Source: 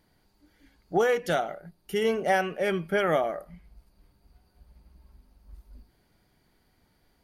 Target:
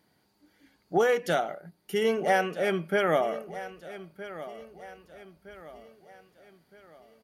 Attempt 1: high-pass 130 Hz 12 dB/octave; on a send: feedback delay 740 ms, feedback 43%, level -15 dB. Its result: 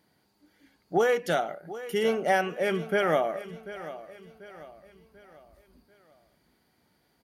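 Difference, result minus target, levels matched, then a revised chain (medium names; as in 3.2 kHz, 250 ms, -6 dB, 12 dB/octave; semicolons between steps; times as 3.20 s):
echo 525 ms early
high-pass 130 Hz 12 dB/octave; on a send: feedback delay 1265 ms, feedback 43%, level -15 dB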